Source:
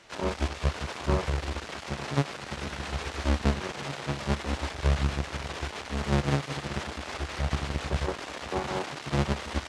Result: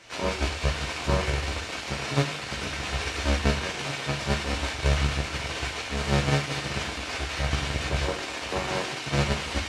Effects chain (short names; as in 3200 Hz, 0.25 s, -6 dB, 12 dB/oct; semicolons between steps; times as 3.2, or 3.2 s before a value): de-hum 74.98 Hz, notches 27; on a send: resonant high shelf 1600 Hz +7.5 dB, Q 1.5 + reverb, pre-delay 3 ms, DRR -1 dB; on the sum: gain +2 dB